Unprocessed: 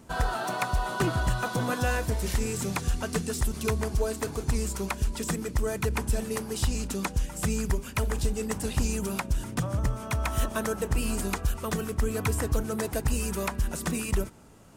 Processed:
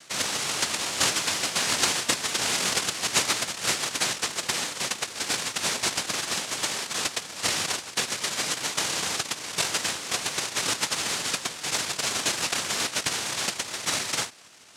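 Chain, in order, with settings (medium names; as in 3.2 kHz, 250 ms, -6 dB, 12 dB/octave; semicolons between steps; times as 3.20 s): 1.71–3.43 s: comb 7.1 ms, depth 94%; noise-vocoded speech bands 1; trim +2.5 dB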